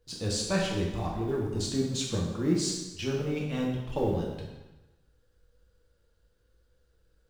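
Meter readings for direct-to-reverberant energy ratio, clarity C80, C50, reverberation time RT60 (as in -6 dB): -3.0 dB, 4.5 dB, 2.0 dB, 1.1 s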